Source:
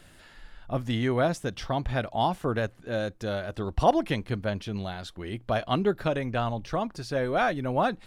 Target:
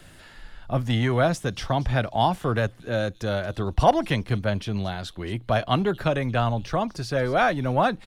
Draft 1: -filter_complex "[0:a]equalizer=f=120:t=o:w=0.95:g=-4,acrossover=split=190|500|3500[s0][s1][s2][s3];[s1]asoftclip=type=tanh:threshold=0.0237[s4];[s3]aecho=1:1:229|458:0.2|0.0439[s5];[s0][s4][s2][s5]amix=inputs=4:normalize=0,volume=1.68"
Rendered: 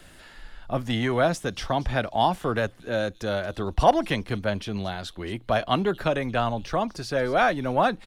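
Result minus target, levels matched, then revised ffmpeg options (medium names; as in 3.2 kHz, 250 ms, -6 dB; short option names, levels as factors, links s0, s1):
125 Hz band -5.0 dB
-filter_complex "[0:a]equalizer=f=120:t=o:w=0.95:g=3,acrossover=split=190|500|3500[s0][s1][s2][s3];[s1]asoftclip=type=tanh:threshold=0.0237[s4];[s3]aecho=1:1:229|458:0.2|0.0439[s5];[s0][s4][s2][s5]amix=inputs=4:normalize=0,volume=1.68"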